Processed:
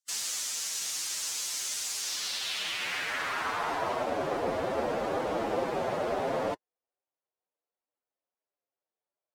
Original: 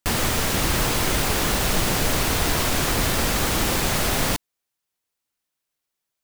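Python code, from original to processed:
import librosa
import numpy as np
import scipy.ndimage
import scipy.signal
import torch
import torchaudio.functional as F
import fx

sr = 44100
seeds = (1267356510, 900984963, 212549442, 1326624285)

y = fx.stretch_vocoder(x, sr, factor=1.5)
y = fx.filter_sweep_bandpass(y, sr, from_hz=6500.0, to_hz=570.0, start_s=1.97, end_s=4.15, q=1.8)
y = fx.rider(y, sr, range_db=10, speed_s=0.5)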